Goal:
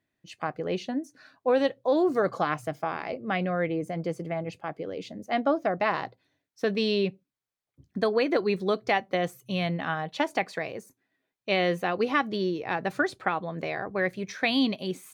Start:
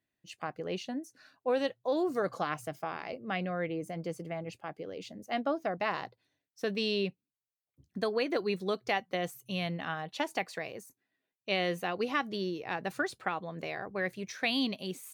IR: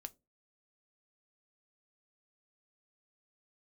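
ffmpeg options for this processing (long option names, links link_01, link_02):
-filter_complex "[0:a]highshelf=frequency=5400:gain=-10,bandreject=frequency=2800:width=18,asplit=2[link_01][link_02];[1:a]atrim=start_sample=2205,afade=type=out:start_time=0.19:duration=0.01,atrim=end_sample=8820[link_03];[link_02][link_03]afir=irnorm=-1:irlink=0,volume=-2dB[link_04];[link_01][link_04]amix=inputs=2:normalize=0,volume=3.5dB"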